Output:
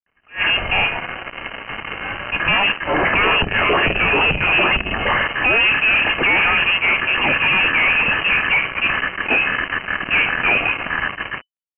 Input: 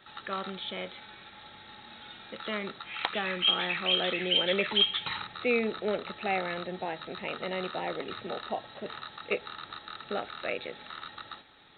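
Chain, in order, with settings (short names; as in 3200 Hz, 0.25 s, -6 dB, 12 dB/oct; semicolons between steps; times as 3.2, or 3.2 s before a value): de-hum 67.99 Hz, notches 18; fuzz box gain 47 dB, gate -47 dBFS; inverted band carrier 3000 Hz; attack slew limiter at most 250 dB/s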